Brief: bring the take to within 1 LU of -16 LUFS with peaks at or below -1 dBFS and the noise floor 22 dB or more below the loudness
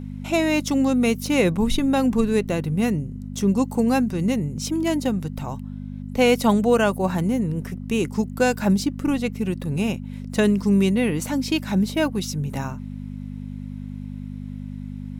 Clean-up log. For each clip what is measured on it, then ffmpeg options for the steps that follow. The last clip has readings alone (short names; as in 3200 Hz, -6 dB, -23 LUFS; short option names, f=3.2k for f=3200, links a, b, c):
hum 50 Hz; harmonics up to 250 Hz; hum level -30 dBFS; loudness -22.5 LUFS; peak -5.5 dBFS; loudness target -16.0 LUFS
-> -af "bandreject=f=50:t=h:w=4,bandreject=f=100:t=h:w=4,bandreject=f=150:t=h:w=4,bandreject=f=200:t=h:w=4,bandreject=f=250:t=h:w=4"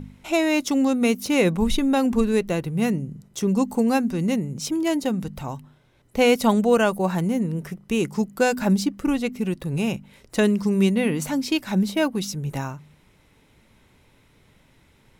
hum none; loudness -22.5 LUFS; peak -6.0 dBFS; loudness target -16.0 LUFS
-> -af "volume=6.5dB,alimiter=limit=-1dB:level=0:latency=1"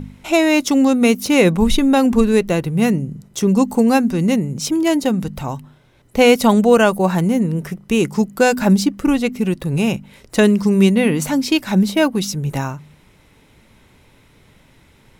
loudness -16.5 LUFS; peak -1.0 dBFS; noise floor -52 dBFS